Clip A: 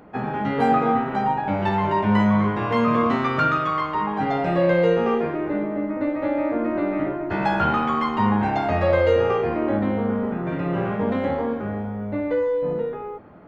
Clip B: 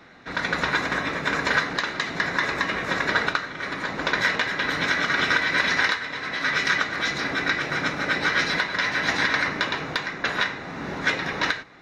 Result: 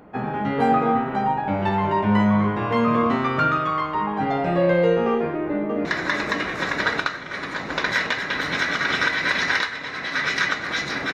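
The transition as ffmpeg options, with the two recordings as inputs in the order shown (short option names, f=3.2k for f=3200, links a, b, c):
-filter_complex "[0:a]apad=whole_dur=11.13,atrim=end=11.13,atrim=end=5.852[a];[1:a]atrim=start=2.138:end=7.42[b];[a][b]acrossfade=d=0.004:c1=hsin:c2=hsin,asplit=2[c][d];[d]afade=t=in:st=5.11:d=0.01,afade=t=out:st=5.85:d=0.01,aecho=0:1:580|1160|1740|2320|2900:0.398107|0.159243|0.0636971|0.0254789|0.0101915[e];[c][e]amix=inputs=2:normalize=0"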